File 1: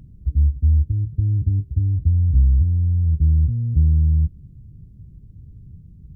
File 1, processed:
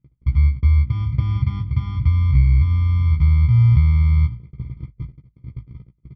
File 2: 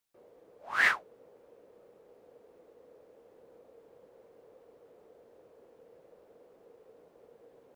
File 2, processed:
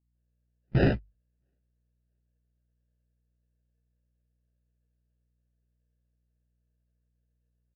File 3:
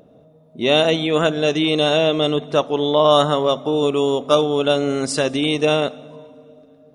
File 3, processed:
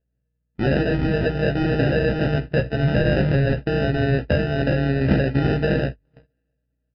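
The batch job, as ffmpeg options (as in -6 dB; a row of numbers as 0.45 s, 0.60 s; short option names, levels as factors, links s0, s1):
-filter_complex "[0:a]acompressor=threshold=0.0251:ratio=2,aemphasis=mode=production:type=50kf,acrusher=samples=40:mix=1:aa=0.000001,equalizer=f=125:t=o:w=1:g=12,equalizer=f=1000:t=o:w=1:g=-9,equalizer=f=2000:t=o:w=1:g=4,equalizer=f=4000:t=o:w=1:g=-10,asplit=2[s0][s1];[s1]aecho=0:1:661|1322|1983:0.133|0.04|0.012[s2];[s0][s2]amix=inputs=2:normalize=0,aeval=exprs='val(0)+0.0126*(sin(2*PI*60*n/s)+sin(2*PI*2*60*n/s)/2+sin(2*PI*3*60*n/s)/3+sin(2*PI*4*60*n/s)/4+sin(2*PI*5*60*n/s)/5)':c=same,agate=range=0.00708:threshold=0.0355:ratio=16:detection=peak,bandreject=f=50:t=h:w=6,bandreject=f=100:t=h:w=6,asplit=2[s3][s4];[s4]adelay=15,volume=0.562[s5];[s3][s5]amix=inputs=2:normalize=0,aresample=11025,aresample=44100,volume=1.68"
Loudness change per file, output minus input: +1.5 LU, +0.5 LU, -3.0 LU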